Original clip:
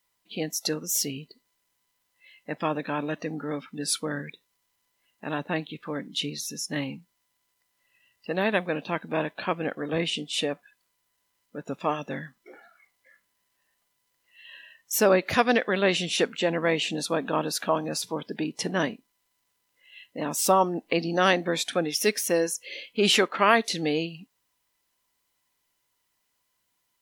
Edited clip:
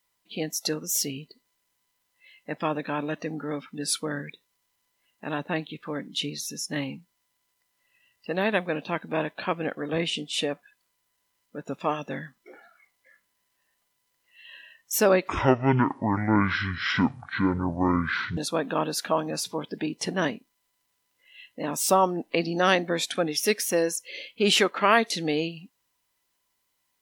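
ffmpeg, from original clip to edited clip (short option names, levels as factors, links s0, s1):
-filter_complex "[0:a]asplit=3[s0][s1][s2];[s0]atrim=end=15.284[s3];[s1]atrim=start=15.28:end=16.95,asetpts=PTS-STARTPTS,asetrate=23814,aresample=44100,atrim=end_sample=136383,asetpts=PTS-STARTPTS[s4];[s2]atrim=start=16.946[s5];[s3][s4]acrossfade=d=0.004:c1=hsin:c2=hsin[s6];[s6][s5]acrossfade=d=0.004:c1=hsin:c2=hsin"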